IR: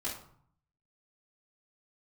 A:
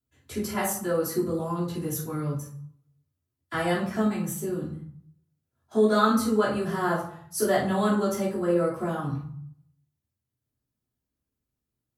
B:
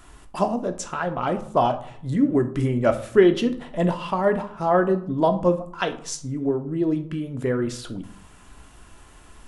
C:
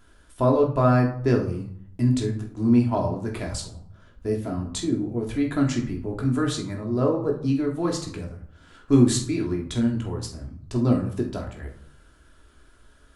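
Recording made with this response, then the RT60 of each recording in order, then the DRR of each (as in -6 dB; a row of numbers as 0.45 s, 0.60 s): A; 0.60 s, 0.60 s, 0.60 s; -10.0 dB, 6.5 dB, -0.5 dB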